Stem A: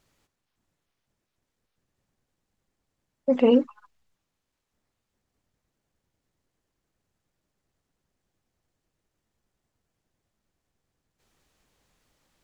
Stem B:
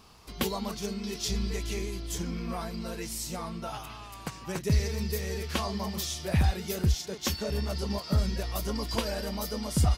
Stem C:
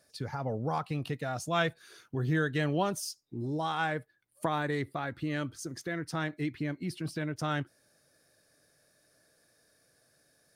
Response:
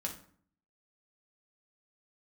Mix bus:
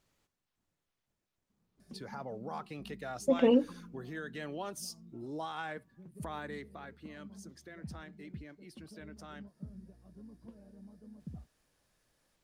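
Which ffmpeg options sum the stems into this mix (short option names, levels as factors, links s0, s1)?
-filter_complex "[0:a]volume=0.447,asplit=2[s0][s1];[s1]volume=0.141[s2];[1:a]bandpass=f=190:t=q:w=1.8:csg=0,adelay=1500,volume=0.188[s3];[2:a]alimiter=level_in=1.19:limit=0.0631:level=0:latency=1:release=185,volume=0.841,acrossover=split=250[s4][s5];[s4]acompressor=threshold=0.00178:ratio=2.5[s6];[s6][s5]amix=inputs=2:normalize=0,adelay=1800,volume=0.631,afade=t=out:st=6.31:d=0.7:silence=0.375837[s7];[3:a]atrim=start_sample=2205[s8];[s2][s8]afir=irnorm=-1:irlink=0[s9];[s0][s3][s7][s9]amix=inputs=4:normalize=0"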